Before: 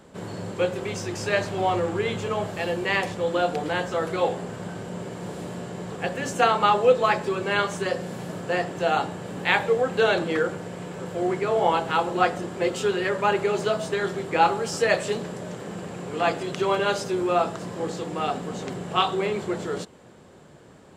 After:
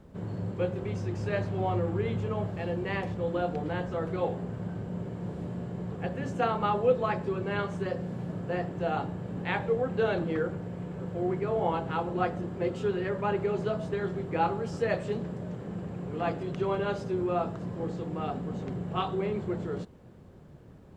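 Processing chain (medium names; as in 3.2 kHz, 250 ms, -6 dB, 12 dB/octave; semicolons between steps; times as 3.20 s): word length cut 10-bit, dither triangular; RIAA curve playback; trim -9 dB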